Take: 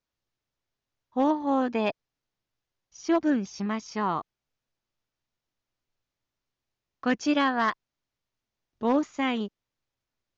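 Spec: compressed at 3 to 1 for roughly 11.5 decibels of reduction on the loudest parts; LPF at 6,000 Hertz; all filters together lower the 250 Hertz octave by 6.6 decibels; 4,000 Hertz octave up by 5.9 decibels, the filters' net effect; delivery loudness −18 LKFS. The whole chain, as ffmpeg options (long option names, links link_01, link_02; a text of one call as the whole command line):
ffmpeg -i in.wav -af "lowpass=6000,equalizer=frequency=250:width_type=o:gain=-8,equalizer=frequency=4000:width_type=o:gain=9,acompressor=threshold=-37dB:ratio=3,volume=21dB" out.wav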